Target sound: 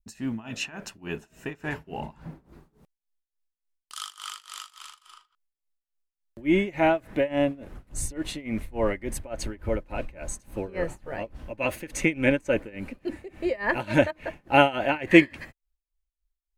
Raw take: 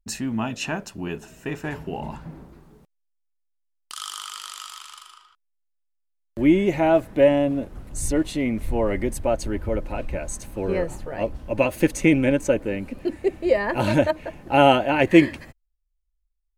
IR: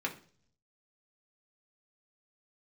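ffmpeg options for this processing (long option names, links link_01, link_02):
-af "adynamicequalizer=threshold=0.0141:dfrequency=2000:dqfactor=0.93:tfrequency=2000:tqfactor=0.93:attack=5:release=100:ratio=0.375:range=3.5:mode=boostabove:tftype=bell,tremolo=f=3.5:d=0.92,volume=-1.5dB"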